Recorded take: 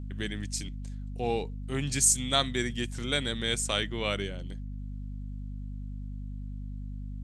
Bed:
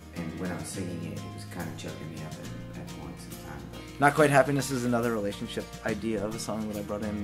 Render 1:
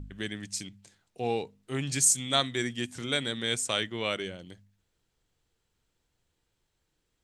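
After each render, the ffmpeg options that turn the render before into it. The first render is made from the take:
-af "bandreject=f=50:t=h:w=4,bandreject=f=100:t=h:w=4,bandreject=f=150:t=h:w=4,bandreject=f=200:t=h:w=4,bandreject=f=250:t=h:w=4"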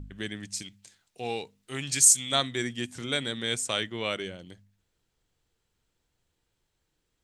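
-filter_complex "[0:a]asettb=1/sr,asplit=3[a][b][c];[a]atrim=end=0.624[d];[b]atrim=start=0.62:end=2.32,asetpts=PTS-STARTPTS,afade=t=in:d=0.004:c=qsin,afade=t=out:st=1.696:d=0.004:c=qsin,tiltshelf=f=1.3k:g=-5[e];[c]atrim=start=2.316[f];[d][e]acrossfade=d=0.004:c1=hsin:c2=qsin[g];[g][f]acrossfade=d=0.004:c1=qsin:c2=hsin"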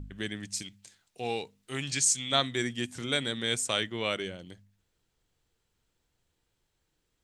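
-filter_complex "[0:a]asettb=1/sr,asplit=3[a][b][c];[a]atrim=end=1.914[d];[b]atrim=start=1.91:end=2.43,asetpts=PTS-STARTPTS,afade=t=in:d=0.004:c=qsin,afade=t=out:st=0.516:d=0.004:c=qsin,lowpass=5.6k[e];[c]atrim=start=2.426[f];[d][e]acrossfade=d=0.004:c1=hsin:c2=qsin[g];[g][f]acrossfade=d=0.004:c1=qsin:c2=hsin"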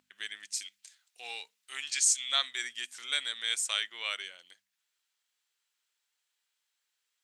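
-af "highpass=1.5k"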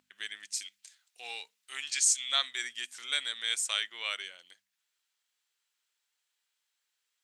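-af anull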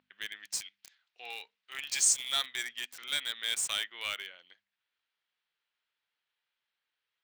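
-filter_complex "[0:a]acrossover=split=4100[a][b];[a]asoftclip=type=hard:threshold=-27dB[c];[b]acrusher=bits=6:mix=0:aa=0.000001[d];[c][d]amix=inputs=2:normalize=0"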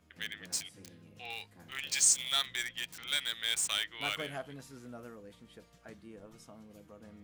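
-filter_complex "[1:a]volume=-20.5dB[a];[0:a][a]amix=inputs=2:normalize=0"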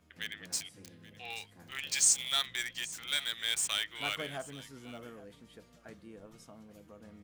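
-af "aecho=1:1:829:0.112"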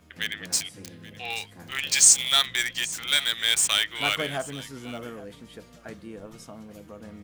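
-af "volume=10dB"

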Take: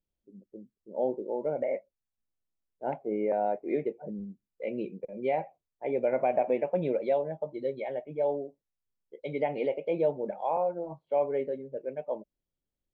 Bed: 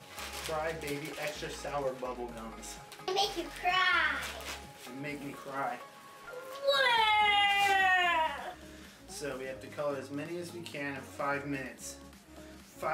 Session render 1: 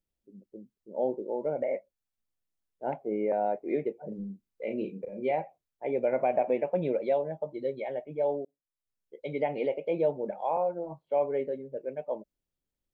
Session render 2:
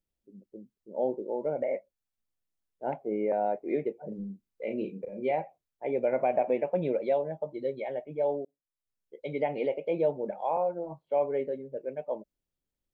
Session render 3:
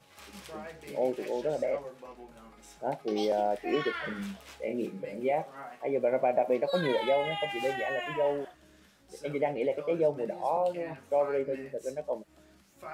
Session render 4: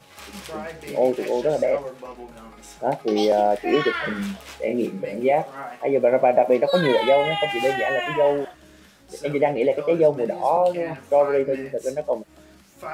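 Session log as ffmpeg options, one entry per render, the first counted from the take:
-filter_complex "[0:a]asettb=1/sr,asplit=3[a][b][c];[a]atrim=end=4.084[d];[b]atrim=start=4.08:end=5.31,asetpts=PTS-STARTPTS,afade=t=in:d=0.004:c=qsin,afade=t=out:st=1.226:d=0.004:c=qsin,asplit=2[e][f];[f]adelay=36,volume=-5dB[g];[e][g]amix=inputs=2:normalize=0,atrim=end_sample=54243[h];[c]atrim=start=5.306[i];[d][h]acrossfade=d=0.004:c1=hsin:c2=qsin[j];[j][i]acrossfade=d=0.004:c1=qsin:c2=hsin,asplit=2[k][l];[k]atrim=end=8.45,asetpts=PTS-STARTPTS,afade=t=out:st=8.446:d=0.004:c=hsin[m];[l]atrim=start=8.45,asetpts=PTS-STARTPTS,afade=t=in:d=0.72[n];[m][n]concat=n=2:v=0:a=1"
-af anull
-filter_complex "[1:a]volume=-9dB[a];[0:a][a]amix=inputs=2:normalize=0"
-af "volume=9.5dB"

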